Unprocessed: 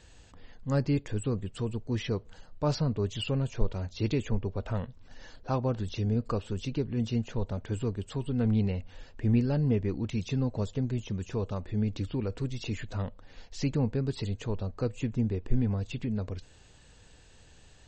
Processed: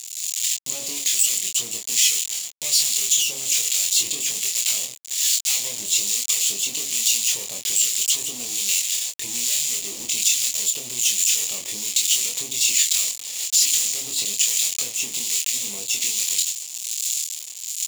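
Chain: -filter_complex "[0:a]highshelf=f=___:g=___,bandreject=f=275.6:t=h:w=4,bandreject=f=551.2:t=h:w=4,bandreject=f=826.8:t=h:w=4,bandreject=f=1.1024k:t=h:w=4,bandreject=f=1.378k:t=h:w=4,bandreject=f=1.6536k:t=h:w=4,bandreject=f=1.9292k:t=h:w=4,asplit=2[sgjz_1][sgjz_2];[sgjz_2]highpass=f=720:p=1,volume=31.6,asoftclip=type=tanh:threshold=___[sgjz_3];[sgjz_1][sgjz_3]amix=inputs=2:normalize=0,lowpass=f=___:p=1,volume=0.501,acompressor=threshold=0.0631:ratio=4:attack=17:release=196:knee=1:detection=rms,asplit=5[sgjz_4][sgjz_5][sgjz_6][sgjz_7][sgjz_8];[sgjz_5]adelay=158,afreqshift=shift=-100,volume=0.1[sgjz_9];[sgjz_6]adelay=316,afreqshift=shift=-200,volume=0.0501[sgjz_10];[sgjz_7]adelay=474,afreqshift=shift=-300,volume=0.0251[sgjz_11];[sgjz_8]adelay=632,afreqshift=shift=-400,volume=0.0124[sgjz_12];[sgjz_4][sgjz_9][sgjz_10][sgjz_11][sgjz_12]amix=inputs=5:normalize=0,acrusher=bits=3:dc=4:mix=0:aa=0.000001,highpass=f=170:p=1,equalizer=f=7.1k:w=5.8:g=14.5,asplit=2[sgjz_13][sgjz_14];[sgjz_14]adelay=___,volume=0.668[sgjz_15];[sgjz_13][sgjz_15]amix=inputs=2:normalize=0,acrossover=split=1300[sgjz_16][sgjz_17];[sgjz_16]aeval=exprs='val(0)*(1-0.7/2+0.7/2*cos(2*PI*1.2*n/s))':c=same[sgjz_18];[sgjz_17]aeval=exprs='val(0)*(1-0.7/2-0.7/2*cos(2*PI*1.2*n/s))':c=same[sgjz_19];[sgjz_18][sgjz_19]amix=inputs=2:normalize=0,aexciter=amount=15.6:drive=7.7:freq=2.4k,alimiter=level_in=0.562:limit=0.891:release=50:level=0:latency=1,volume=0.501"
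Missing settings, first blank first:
3.5k, -7.5, 0.282, 6.5k, 25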